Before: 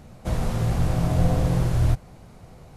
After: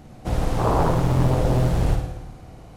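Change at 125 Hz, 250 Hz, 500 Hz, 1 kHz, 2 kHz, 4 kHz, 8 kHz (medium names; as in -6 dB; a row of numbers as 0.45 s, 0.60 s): +1.0 dB, +2.0 dB, +6.5 dB, +8.0 dB, +3.5 dB, +2.0 dB, +0.5 dB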